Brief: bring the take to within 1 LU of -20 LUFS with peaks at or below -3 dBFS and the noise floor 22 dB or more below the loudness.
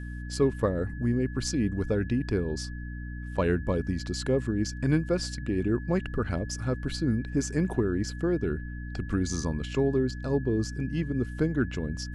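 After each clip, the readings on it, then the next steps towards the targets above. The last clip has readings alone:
hum 60 Hz; harmonics up to 300 Hz; hum level -35 dBFS; steady tone 1700 Hz; tone level -46 dBFS; loudness -29.0 LUFS; peak -11.5 dBFS; loudness target -20.0 LUFS
-> de-hum 60 Hz, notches 5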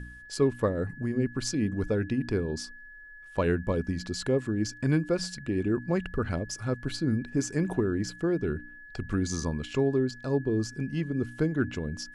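hum none; steady tone 1700 Hz; tone level -46 dBFS
-> notch 1700 Hz, Q 30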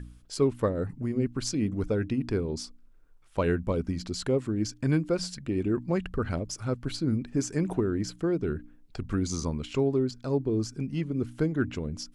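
steady tone none; loudness -29.5 LUFS; peak -13.0 dBFS; loudness target -20.0 LUFS
-> gain +9.5 dB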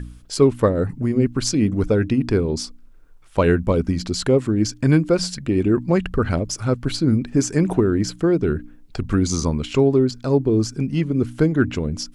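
loudness -20.0 LUFS; peak -3.5 dBFS; noise floor -46 dBFS

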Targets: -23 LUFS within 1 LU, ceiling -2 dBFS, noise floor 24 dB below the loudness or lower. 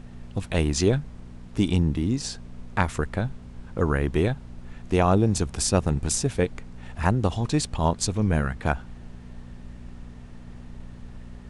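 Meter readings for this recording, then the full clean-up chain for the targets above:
hum 60 Hz; harmonics up to 240 Hz; hum level -44 dBFS; noise floor -43 dBFS; noise floor target -50 dBFS; loudness -25.5 LUFS; peak -6.5 dBFS; loudness target -23.0 LUFS
-> de-hum 60 Hz, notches 4; noise print and reduce 7 dB; gain +2.5 dB

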